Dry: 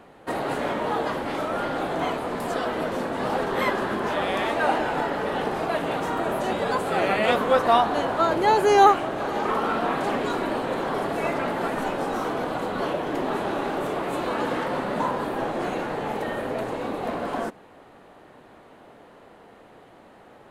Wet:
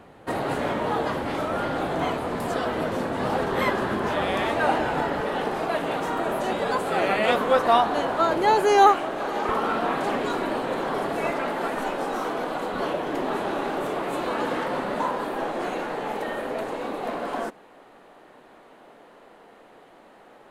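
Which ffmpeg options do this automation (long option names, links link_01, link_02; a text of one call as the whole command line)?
ffmpeg -i in.wav -af "asetnsamples=nb_out_samples=441:pad=0,asendcmd='5.2 equalizer g -4.5;8.62 equalizer g -12;9.49 equalizer g -4;11.3 equalizer g -12;12.74 equalizer g -5.5;14.94 equalizer g -12.5',equalizer=frequency=89:width_type=o:width=1.7:gain=6" out.wav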